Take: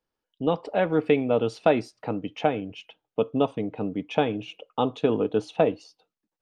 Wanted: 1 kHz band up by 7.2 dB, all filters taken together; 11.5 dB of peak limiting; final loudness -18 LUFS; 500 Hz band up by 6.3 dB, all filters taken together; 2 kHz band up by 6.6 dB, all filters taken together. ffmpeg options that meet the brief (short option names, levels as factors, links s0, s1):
-af "equalizer=f=500:t=o:g=5.5,equalizer=f=1000:t=o:g=6.5,equalizer=f=2000:t=o:g=6.5,volume=2.51,alimiter=limit=0.562:level=0:latency=1"